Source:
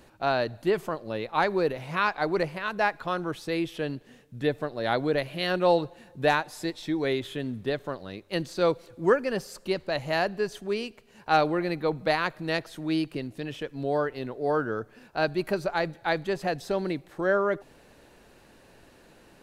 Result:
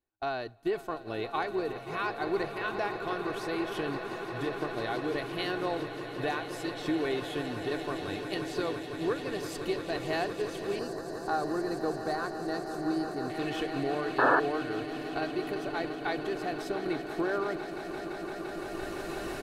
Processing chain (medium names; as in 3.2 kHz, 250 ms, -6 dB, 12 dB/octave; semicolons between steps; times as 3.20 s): recorder AGC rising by 11 dB/s; random-step tremolo; compression 2:1, threshold -35 dBFS, peak gain reduction 9 dB; comb 2.7 ms, depth 49%; echo with a slow build-up 171 ms, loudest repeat 8, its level -13 dB; expander -34 dBFS; 10.79–13.30 s: high-order bell 2.7 kHz -14.5 dB 1 oct; 14.18–14.40 s: painted sound noise 270–1800 Hz -23 dBFS